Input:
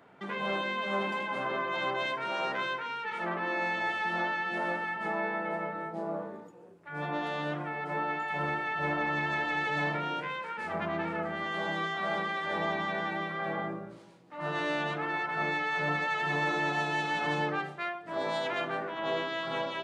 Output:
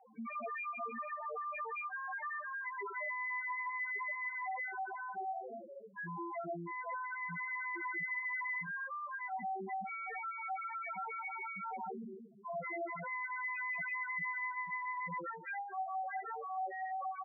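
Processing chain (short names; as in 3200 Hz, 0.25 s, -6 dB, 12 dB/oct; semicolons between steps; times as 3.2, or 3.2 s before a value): on a send: echo 0.222 s -15 dB; on the sum: wide varispeed 1.15×; loudest bins only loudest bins 2; compressor 2.5:1, threshold -49 dBFS, peak gain reduction 11.5 dB; rippled Chebyshev low-pass 2700 Hz, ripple 3 dB; gain +8 dB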